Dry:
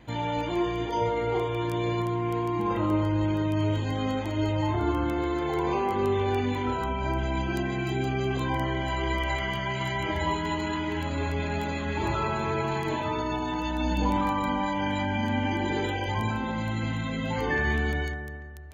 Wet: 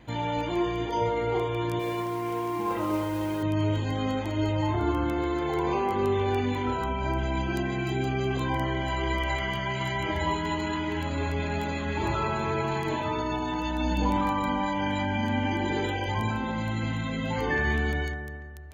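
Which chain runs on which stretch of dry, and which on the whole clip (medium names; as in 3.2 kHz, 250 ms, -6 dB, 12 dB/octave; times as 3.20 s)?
1.79–3.43 s: modulation noise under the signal 20 dB + tone controls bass -9 dB, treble -6 dB
whole clip: none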